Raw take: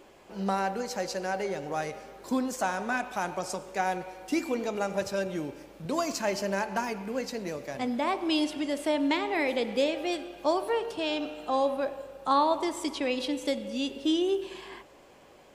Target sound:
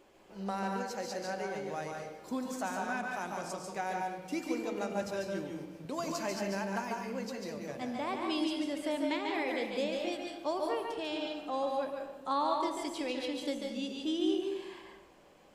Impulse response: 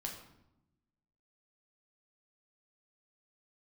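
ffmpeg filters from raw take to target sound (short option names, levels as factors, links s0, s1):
-filter_complex "[0:a]asplit=2[s0][s1];[1:a]atrim=start_sample=2205,adelay=142[s2];[s1][s2]afir=irnorm=-1:irlink=0,volume=0.944[s3];[s0][s3]amix=inputs=2:normalize=0,volume=0.398"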